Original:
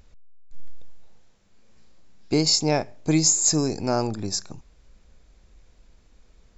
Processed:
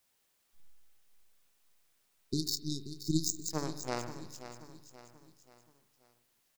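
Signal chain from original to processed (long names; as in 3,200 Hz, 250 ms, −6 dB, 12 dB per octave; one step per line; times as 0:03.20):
low-pass filter 6,400 Hz
power curve on the samples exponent 3
time-frequency box erased 0:00.69–0:03.51, 420–3,600 Hz
background noise white −75 dBFS
on a send: repeating echo 531 ms, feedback 44%, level −12 dB
on the sum: spring reverb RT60 1.3 s, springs 42/49 ms, chirp 30 ms, DRR 11.5 dB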